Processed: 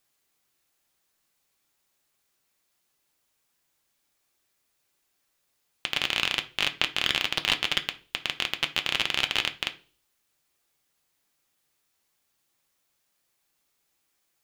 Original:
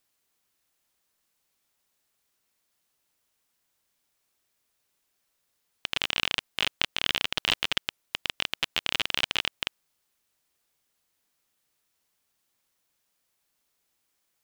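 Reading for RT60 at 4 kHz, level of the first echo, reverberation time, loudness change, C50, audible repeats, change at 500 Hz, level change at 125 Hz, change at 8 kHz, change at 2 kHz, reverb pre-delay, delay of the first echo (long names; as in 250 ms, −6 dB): 0.40 s, no echo audible, 0.40 s, +2.0 dB, 16.5 dB, no echo audible, +1.5 dB, +2.0 dB, +1.5 dB, +2.0 dB, 3 ms, no echo audible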